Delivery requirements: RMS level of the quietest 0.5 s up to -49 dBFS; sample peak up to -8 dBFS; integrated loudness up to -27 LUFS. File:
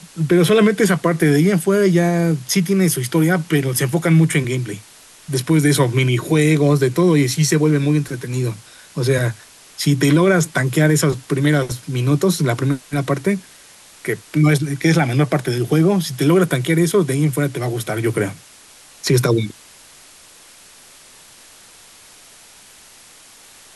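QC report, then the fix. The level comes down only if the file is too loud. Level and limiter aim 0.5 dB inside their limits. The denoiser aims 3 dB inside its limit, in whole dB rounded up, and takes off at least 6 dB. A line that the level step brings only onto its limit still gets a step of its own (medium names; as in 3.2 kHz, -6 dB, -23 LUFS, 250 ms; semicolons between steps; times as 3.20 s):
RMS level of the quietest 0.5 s -45 dBFS: fail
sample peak -5.0 dBFS: fail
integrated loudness -17.0 LUFS: fail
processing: trim -10.5 dB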